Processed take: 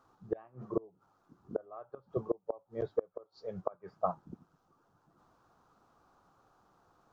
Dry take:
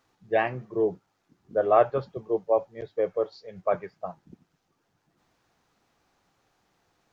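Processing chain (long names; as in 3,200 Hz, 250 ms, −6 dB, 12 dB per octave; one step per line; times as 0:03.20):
gate with flip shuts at −20 dBFS, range −32 dB
high shelf with overshoot 1,600 Hz −7.5 dB, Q 3
level +1.5 dB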